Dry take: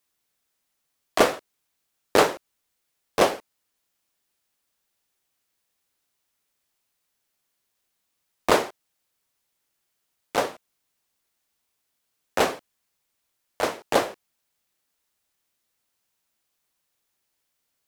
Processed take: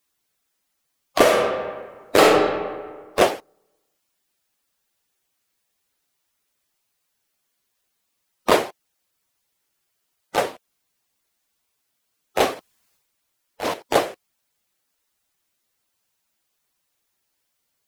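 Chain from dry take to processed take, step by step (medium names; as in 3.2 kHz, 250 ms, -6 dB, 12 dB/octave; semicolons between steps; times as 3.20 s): coarse spectral quantiser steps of 15 dB; 1.21–2.23 s: reverb throw, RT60 1.5 s, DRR -2.5 dB; 12.54–13.74 s: transient shaper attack -9 dB, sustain +7 dB; trim +3 dB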